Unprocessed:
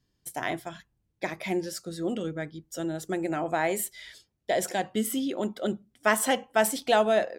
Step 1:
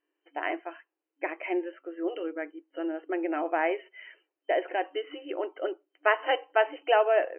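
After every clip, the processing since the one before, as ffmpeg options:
ffmpeg -i in.wav -af "afftfilt=real='re*between(b*sr/4096,290,3100)':imag='im*between(b*sr/4096,290,3100)':win_size=4096:overlap=0.75" out.wav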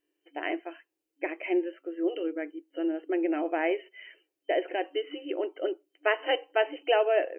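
ffmpeg -i in.wav -af "equalizer=frequency=1100:width=0.74:gain=-13,volume=6dB" out.wav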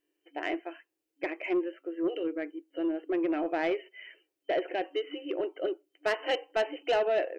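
ffmpeg -i in.wav -af "asoftclip=type=tanh:threshold=-20.5dB" out.wav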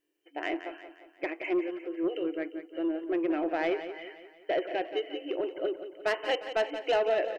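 ffmpeg -i in.wav -af "aecho=1:1:176|352|528|704|880:0.282|0.138|0.0677|0.0332|0.0162" out.wav

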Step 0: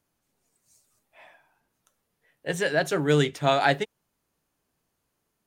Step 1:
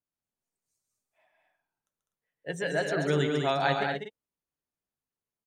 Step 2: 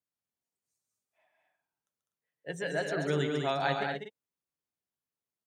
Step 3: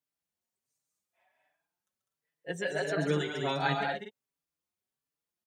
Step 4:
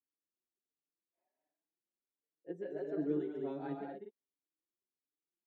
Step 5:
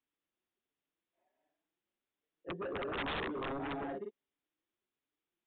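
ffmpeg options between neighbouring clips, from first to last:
ffmpeg -i in.wav -filter_complex "[0:a]afftdn=noise_reduction=14:noise_floor=-38,asplit=2[link_01][link_02];[link_02]aecho=0:1:137|201.2|247.8:0.501|0.562|0.355[link_03];[link_01][link_03]amix=inputs=2:normalize=0,volume=-6dB" out.wav
ffmpeg -i in.wav -af "highpass=69,volume=-3.5dB" out.wav
ffmpeg -i in.wav -filter_complex "[0:a]asplit=2[link_01][link_02];[link_02]adelay=4.7,afreqshift=1.4[link_03];[link_01][link_03]amix=inputs=2:normalize=1,volume=4dB" out.wav
ffmpeg -i in.wav -af "bandpass=frequency=330:width_type=q:width=3.7:csg=0,volume=1.5dB" out.wav
ffmpeg -i in.wav -af "aeval=exprs='0.0668*(cos(1*acos(clip(val(0)/0.0668,-1,1)))-cos(1*PI/2))+0.0211*(cos(7*acos(clip(val(0)/0.0668,-1,1)))-cos(7*PI/2))':channel_layout=same,aeval=exprs='(mod(53.1*val(0)+1,2)-1)/53.1':channel_layout=same,aresample=8000,aresample=44100,volume=6dB" out.wav

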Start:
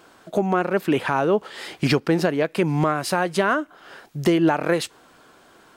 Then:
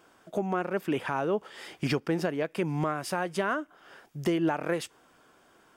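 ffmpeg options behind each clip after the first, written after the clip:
ffmpeg -i in.wav -af "bandreject=frequency=4100:width=7.1,volume=-8.5dB" out.wav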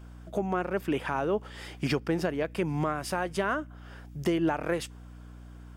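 ffmpeg -i in.wav -af "aeval=exprs='val(0)+0.00562*(sin(2*PI*60*n/s)+sin(2*PI*2*60*n/s)/2+sin(2*PI*3*60*n/s)/3+sin(2*PI*4*60*n/s)/4+sin(2*PI*5*60*n/s)/5)':channel_layout=same" out.wav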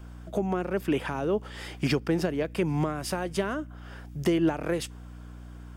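ffmpeg -i in.wav -filter_complex "[0:a]acrossover=split=500|3000[link_01][link_02][link_03];[link_02]acompressor=threshold=-36dB:ratio=6[link_04];[link_01][link_04][link_03]amix=inputs=3:normalize=0,volume=3dB" out.wav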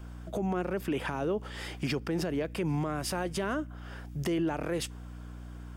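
ffmpeg -i in.wav -af "alimiter=limit=-22.5dB:level=0:latency=1:release=37" out.wav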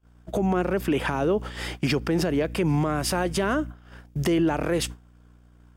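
ffmpeg -i in.wav -af "agate=range=-35dB:threshold=-40dB:ratio=16:detection=peak,volume=7.5dB" out.wav

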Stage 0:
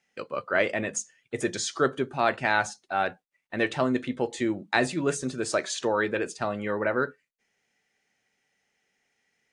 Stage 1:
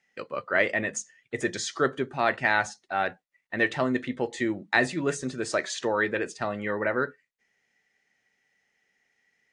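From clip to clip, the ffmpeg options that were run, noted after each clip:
ffmpeg -i in.wav -af "lowpass=8500,equalizer=frequency=1900:width_type=o:width=0.23:gain=8,volume=-1dB" out.wav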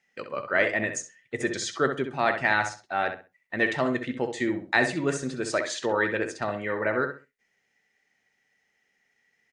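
ffmpeg -i in.wav -filter_complex "[0:a]asplit=2[link_01][link_02];[link_02]adelay=65,lowpass=frequency=3300:poles=1,volume=-7dB,asplit=2[link_03][link_04];[link_04]adelay=65,lowpass=frequency=3300:poles=1,volume=0.26,asplit=2[link_05][link_06];[link_06]adelay=65,lowpass=frequency=3300:poles=1,volume=0.26[link_07];[link_01][link_03][link_05][link_07]amix=inputs=4:normalize=0" out.wav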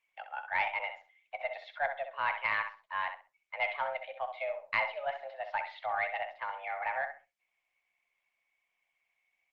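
ffmpeg -i in.wav -af "highpass=frequency=290:width_type=q:width=0.5412,highpass=frequency=290:width_type=q:width=1.307,lowpass=frequency=3200:width_type=q:width=0.5176,lowpass=frequency=3200:width_type=q:width=0.7071,lowpass=frequency=3200:width_type=q:width=1.932,afreqshift=280,aeval=exprs='0.422*(cos(1*acos(clip(val(0)/0.422,-1,1)))-cos(1*PI/2))+0.0422*(cos(2*acos(clip(val(0)/0.422,-1,1)))-cos(2*PI/2))':channel_layout=same,volume=-7.5dB" -ar 48000 -c:a libopus -b:a 24k out.opus

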